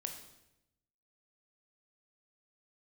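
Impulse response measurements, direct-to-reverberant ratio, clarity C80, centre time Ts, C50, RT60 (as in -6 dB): 4.0 dB, 9.5 dB, 22 ms, 7.0 dB, 0.85 s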